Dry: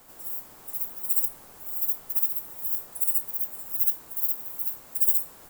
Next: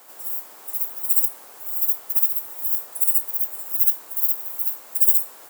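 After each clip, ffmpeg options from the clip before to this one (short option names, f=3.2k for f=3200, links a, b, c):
-af "highpass=420,volume=5.5dB"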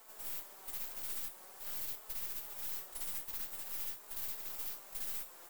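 -af "acompressor=threshold=-23dB:ratio=2,flanger=delay=4.5:depth=1.3:regen=40:speed=0.46:shape=triangular,aeval=exprs='(tanh(70.8*val(0)+0.75)-tanh(0.75))/70.8':c=same,volume=-1.5dB"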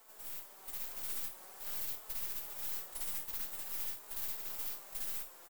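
-filter_complex "[0:a]asplit=2[a][b];[b]adelay=50,volume=-12.5dB[c];[a][c]amix=inputs=2:normalize=0,dynaudnorm=f=290:g=5:m=4dB,volume=-3dB"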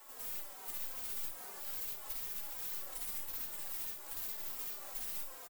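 -filter_complex "[0:a]alimiter=level_in=14.5dB:limit=-24dB:level=0:latency=1:release=114,volume=-14.5dB,asplit=2[a][b];[b]adelay=3,afreqshift=-2.5[c];[a][c]amix=inputs=2:normalize=1,volume=8.5dB"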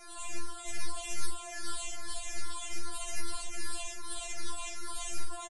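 -af "aresample=22050,aresample=44100,afftfilt=real='re*4*eq(mod(b,16),0)':imag='im*4*eq(mod(b,16),0)':win_size=2048:overlap=0.75,volume=12dB"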